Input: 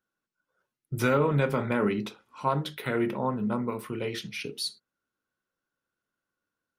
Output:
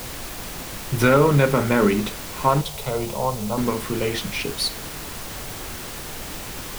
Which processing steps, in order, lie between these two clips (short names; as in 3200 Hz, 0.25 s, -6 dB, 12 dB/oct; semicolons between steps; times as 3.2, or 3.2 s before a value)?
added noise pink -42 dBFS; 2.61–3.58 fixed phaser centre 700 Hz, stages 4; requantised 8-bit, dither triangular; gain +8 dB